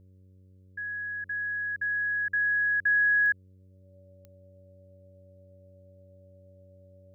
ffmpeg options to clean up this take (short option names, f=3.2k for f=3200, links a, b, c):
-af "adeclick=t=4,bandreject=f=93.6:t=h:w=4,bandreject=f=187.2:t=h:w=4,bandreject=f=280.8:t=h:w=4,bandreject=f=374.4:t=h:w=4,bandreject=f=468:t=h:w=4,bandreject=f=561.6:t=h:w=4,bandreject=f=570:w=30"